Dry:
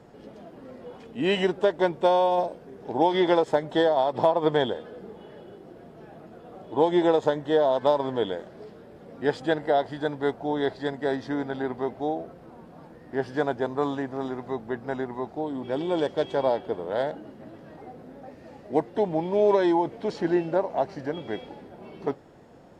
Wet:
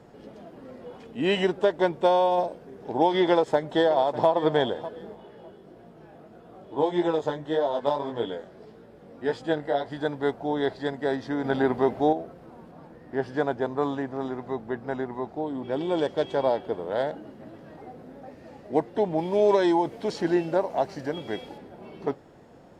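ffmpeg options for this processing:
ffmpeg -i in.wav -filter_complex "[0:a]asplit=2[link_01][link_02];[link_02]afade=type=in:start_time=3.3:duration=0.01,afade=type=out:start_time=4.28:duration=0.01,aecho=0:1:600|1200|1800:0.177828|0.044457|0.0111142[link_03];[link_01][link_03]amix=inputs=2:normalize=0,asplit=3[link_04][link_05][link_06];[link_04]afade=type=out:start_time=5.14:duration=0.02[link_07];[link_05]flanger=delay=17:depth=4.5:speed=1.7,afade=type=in:start_time=5.14:duration=0.02,afade=type=out:start_time=9.9:duration=0.02[link_08];[link_06]afade=type=in:start_time=9.9:duration=0.02[link_09];[link_07][link_08][link_09]amix=inputs=3:normalize=0,asettb=1/sr,asplit=3[link_10][link_11][link_12];[link_10]atrim=end=11.444[link_13];[link_11]atrim=start=11.44:end=12.13,asetpts=PTS-STARTPTS,afade=type=in:duration=0.004:curve=qsin,afade=type=out:start_time=0.686:duration=0.004:curve=qsin,acontrast=64[link_14];[link_12]atrim=start=12.126[link_15];[link_13][link_14]acrossfade=duration=0.004:curve1=hsin:curve2=qsin[link_16];[link_16][link_15]acrossfade=duration=0.004:curve1=qsin:curve2=hsin,asettb=1/sr,asplit=3[link_17][link_18][link_19];[link_17]atrim=end=12.714[link_20];[link_18]atrim=start=12.71:end=15.81,asetpts=PTS-STARTPTS,afade=type=in:duration=0.004:curve=qsin,afade=type=out:start_time=3.096:duration=0.004:curve=qsin,highshelf=frequency=3600:gain=-4[link_21];[link_19]atrim=start=15.806[link_22];[link_20][link_21]acrossfade=duration=0.004:curve1=hsin:curve2=qsin[link_23];[link_23][link_22]acrossfade=duration=0.004:curve1=qsin:curve2=hsin,asettb=1/sr,asplit=3[link_24][link_25][link_26];[link_24]atrim=end=19.184[link_27];[link_25]atrim=start=19.18:end=21.58,asetpts=PTS-STARTPTS,afade=type=in:duration=0.004:curve=qsin,afade=type=out:start_time=2.396:duration=0.004:curve=qsin,highshelf=frequency=5000:gain=10.5[link_28];[link_26]atrim=start=21.576[link_29];[link_27][link_28]acrossfade=duration=0.004:curve1=hsin:curve2=qsin[link_30];[link_30][link_29]acrossfade=duration=0.004:curve1=qsin:curve2=hsin" out.wav

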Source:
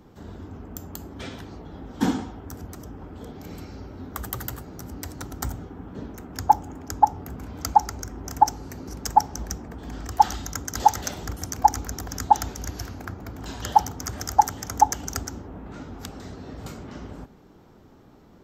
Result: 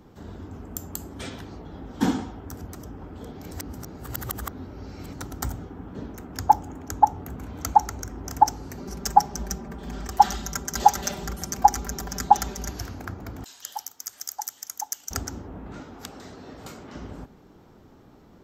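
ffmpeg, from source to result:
ffmpeg -i in.wav -filter_complex "[0:a]asettb=1/sr,asplit=3[link_01][link_02][link_03];[link_01]atrim=end=0.514[link_04];[link_02]atrim=start=0.51:end=1.3,asetpts=PTS-STARTPTS,afade=type=in:duration=0.004:curve=qsin,afade=type=out:start_time=0.786:duration=0.004:curve=qsin,equalizer=frequency=9600:width=1.3:gain=12.5[link_05];[link_03]atrim=start=1.296[link_06];[link_04][link_05]acrossfade=duration=0.004:curve1=hsin:curve2=qsin[link_07];[link_07][link_06]acrossfade=duration=0.004:curve1=qsin:curve2=hsin,asettb=1/sr,asplit=3[link_08][link_09][link_10];[link_08]atrim=end=6.714[link_11];[link_09]atrim=start=6.71:end=8.1,asetpts=PTS-STARTPTS,afade=type=in:duration=0.004:curve=qsin,afade=type=out:start_time=1.386:duration=0.004:curve=qsin,bandreject=frequency=5000:width=7.1[link_12];[link_10]atrim=start=8.096[link_13];[link_11][link_12]acrossfade=duration=0.004:curve1=hsin:curve2=qsin[link_14];[link_14][link_13]acrossfade=duration=0.004:curve1=qsin:curve2=hsin,asettb=1/sr,asplit=3[link_15][link_16][link_17];[link_15]atrim=end=8.774[link_18];[link_16]atrim=start=8.77:end=12.73,asetpts=PTS-STARTPTS,afade=type=in:duration=0.004:curve=qsin,afade=type=out:start_time=3.956:duration=0.004:curve=qsin,aecho=1:1:5.1:0.65,atrim=end_sample=174636[link_19];[link_17]atrim=start=12.726[link_20];[link_18][link_19]acrossfade=duration=0.004:curve1=hsin:curve2=qsin[link_21];[link_21][link_20]acrossfade=duration=0.004:curve1=qsin:curve2=hsin,asettb=1/sr,asplit=3[link_22][link_23][link_24];[link_22]atrim=end=13.444[link_25];[link_23]atrim=start=13.44:end=15.11,asetpts=PTS-STARTPTS,afade=type=in:duration=0.004:curve=qsin,afade=type=out:start_time=1.666:duration=0.004:curve=qsin,aderivative[link_26];[link_24]atrim=start=15.106[link_27];[link_25][link_26]acrossfade=duration=0.004:curve1=hsin:curve2=qsin[link_28];[link_28][link_27]acrossfade=duration=0.004:curve1=qsin:curve2=hsin,asettb=1/sr,asplit=3[link_29][link_30][link_31];[link_29]atrim=end=15.804[link_32];[link_30]atrim=start=15.8:end=16.94,asetpts=PTS-STARTPTS,afade=type=in:duration=0.004:curve=qsin,afade=type=out:start_time=1.136:duration=0.004:curve=qsin,lowshelf=frequency=170:gain=-11.5[link_33];[link_31]atrim=start=16.936[link_34];[link_32][link_33]acrossfade=duration=0.004:curve1=hsin:curve2=qsin[link_35];[link_35][link_34]acrossfade=duration=0.004:curve1=qsin:curve2=hsin,asplit=3[link_36][link_37][link_38];[link_36]atrim=end=3.512[link_39];[link_37]atrim=start=3.508:end=5.132,asetpts=PTS-STARTPTS,areverse[link_40];[link_38]atrim=start=5.128[link_41];[link_39][link_40]acrossfade=duration=0.004:curve1=hsin:curve2=hsin[link_42];[link_42][link_41]acrossfade=duration=0.004:curve1=hsin:curve2=hsin" out.wav

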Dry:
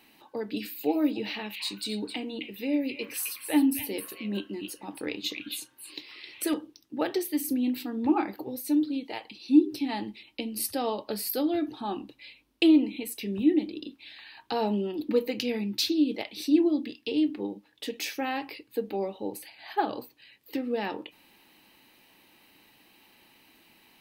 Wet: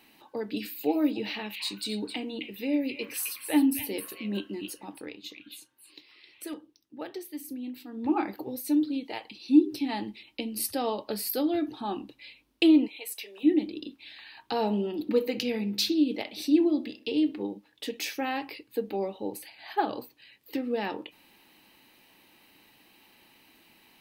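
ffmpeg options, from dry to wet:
ffmpeg -i in.wav -filter_complex "[0:a]asplit=3[link_01][link_02][link_03];[link_01]afade=type=out:start_time=12.86:duration=0.02[link_04];[link_02]highpass=frequency=540:width=0.5412,highpass=frequency=540:width=1.3066,afade=type=in:start_time=12.86:duration=0.02,afade=type=out:start_time=13.43:duration=0.02[link_05];[link_03]afade=type=in:start_time=13.43:duration=0.02[link_06];[link_04][link_05][link_06]amix=inputs=3:normalize=0,asettb=1/sr,asplit=3[link_07][link_08][link_09];[link_07]atrim=end=14.424[link_10];[link_08]atrim=start=14.42:end=17.42,asetpts=PTS-STARTPTS,afade=type=in:duration=0.004:curve=qsin,afade=type=out:start_time=2.996:duration=0.004:curve=qsin,asplit=2[link_11][link_12];[link_12]adelay=64,lowpass=frequency=2000:poles=1,volume=-15.5dB,asplit=2[link_13][link_14];[link_14]adelay=64,lowpass=frequency=2000:poles=1,volume=0.52,asplit=2[link_15][link_16];[link_16]adelay=64,lowpass=frequency=2000:poles=1,volume=0.52,asplit=2[link_17][link_18];[link_18]adelay=64,lowpass=frequency=2000:poles=1,volume=0.52,asplit=2[link_19][link_20];[link_20]adelay=64,lowpass=frequency=2000:poles=1,volume=0.52[link_21];[link_11][link_13][link_15][link_17][link_19][link_21]amix=inputs=6:normalize=0,atrim=end_sample=132300[link_22];[link_09]atrim=start=17.416[link_23];[link_10][link_22]acrossfade=duration=0.004:curve1=hsin:curve2=qsin[link_24];[link_24][link_23]acrossfade=duration=0.004:curve1=qsin:curve2=hsin,asplit=3[link_25][link_26][link_27];[link_25]atrim=end=5.14,asetpts=PTS-STARTPTS,afade=type=out:start_time=4.74:duration=0.4:silence=0.316228[link_28];[link_26]atrim=start=5.14:end=7.85,asetpts=PTS-STARTPTS,volume=-10dB[link_29];[link_27]atrim=start=7.85,asetpts=PTS-STARTPTS,afade=type=in:duration=0.4:silence=0.316228[link_30];[link_28][link_29][link_30]concat=n=3:v=0:a=1" out.wav

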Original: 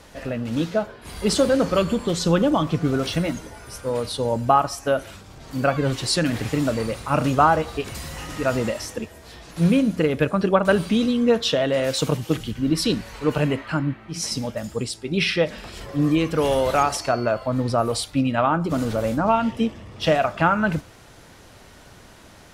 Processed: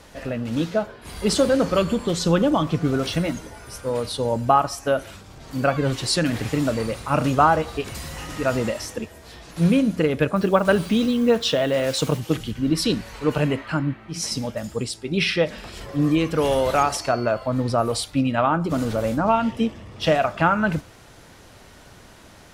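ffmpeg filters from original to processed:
ffmpeg -i in.wav -filter_complex "[0:a]asettb=1/sr,asplit=3[link_01][link_02][link_03];[link_01]atrim=end=10.364[link_04];[link_02]atrim=start=10.36:end=12.2,asetpts=PTS-STARTPTS,afade=type=in:duration=0.004:curve=qsin,afade=type=out:start_time=1.836:duration=0.004:curve=qsin,acrusher=bits=6:mix=0:aa=0.5[link_05];[link_03]atrim=start=12.196[link_06];[link_04][link_05]acrossfade=duration=0.004:curve1=hsin:curve2=qsin[link_07];[link_07][link_06]acrossfade=duration=0.004:curve1=qsin:curve2=hsin" out.wav

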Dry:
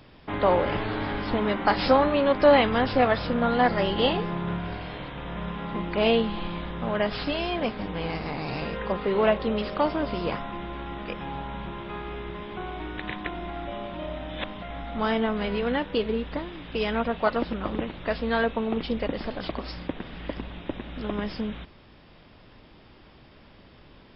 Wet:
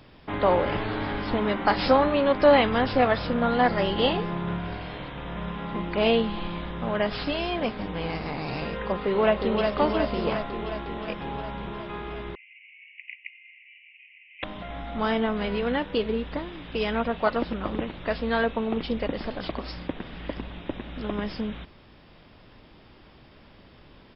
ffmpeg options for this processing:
ffmpeg -i in.wav -filter_complex "[0:a]asplit=2[link_01][link_02];[link_02]afade=type=in:start_time=9.01:duration=0.01,afade=type=out:start_time=9.71:duration=0.01,aecho=0:1:360|720|1080|1440|1800|2160|2520|2880|3240|3600|3960|4320:0.595662|0.416964|0.291874|0.204312|0.143018|0.100113|0.0700791|0.0490553|0.0343387|0.0240371|0.016826|0.0117782[link_03];[link_01][link_03]amix=inputs=2:normalize=0,asettb=1/sr,asplit=3[link_04][link_05][link_06];[link_04]atrim=end=12.354[link_07];[link_05]atrim=start=12.35:end=14.43,asetpts=PTS-STARTPTS,afade=type=in:duration=0.004:curve=qsin,afade=type=out:start_time=2.076:duration=0.004:curve=qsin,asuperpass=centerf=2400:order=12:qfactor=2.8[link_08];[link_06]atrim=start=14.426[link_09];[link_07][link_08]acrossfade=duration=0.004:curve1=hsin:curve2=qsin[link_10];[link_10][link_09]acrossfade=duration=0.004:curve1=qsin:curve2=hsin" out.wav

